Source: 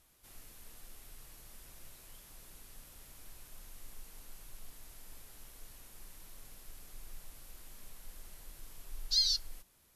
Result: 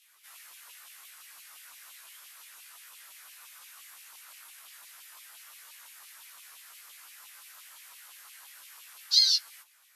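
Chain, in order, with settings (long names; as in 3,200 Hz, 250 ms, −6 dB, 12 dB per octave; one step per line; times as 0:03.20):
auto-filter high-pass saw down 5.8 Hz 970–3,000 Hz
multi-voice chorus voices 4, 0.29 Hz, delay 17 ms, depth 3.7 ms
level +8.5 dB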